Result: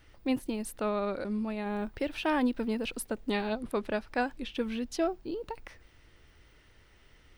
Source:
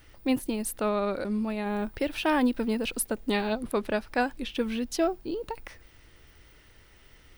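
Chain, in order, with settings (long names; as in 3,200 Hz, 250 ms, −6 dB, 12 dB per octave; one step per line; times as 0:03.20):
high-shelf EQ 9,600 Hz −10.5 dB
level −3.5 dB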